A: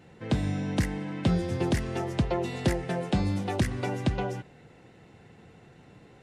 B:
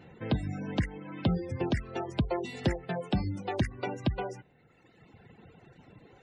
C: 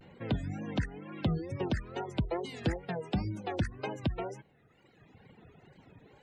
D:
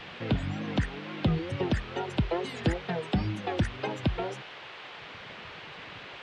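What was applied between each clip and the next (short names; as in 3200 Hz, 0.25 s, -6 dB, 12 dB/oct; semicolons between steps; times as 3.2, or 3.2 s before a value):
reverb removal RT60 1.5 s; spectral gate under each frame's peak -30 dB strong; in parallel at -2 dB: compressor, threshold -36 dBFS, peak gain reduction 15.5 dB; on the sum: gain -3.5 dB
wow and flutter 140 cents; in parallel at -12 dB: soft clip -26 dBFS, distortion -11 dB; on the sum: gain -4 dB
band noise 350–3300 Hz -49 dBFS; gain +4 dB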